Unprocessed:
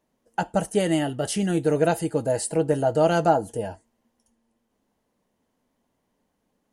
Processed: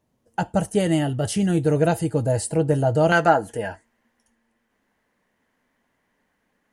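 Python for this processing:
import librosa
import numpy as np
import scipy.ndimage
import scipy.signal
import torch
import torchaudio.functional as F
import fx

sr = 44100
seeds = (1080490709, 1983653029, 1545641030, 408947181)

y = fx.peak_eq(x, sr, hz=fx.steps((0.0, 100.0), (3.12, 1800.0)), db=14.0, octaves=1.1)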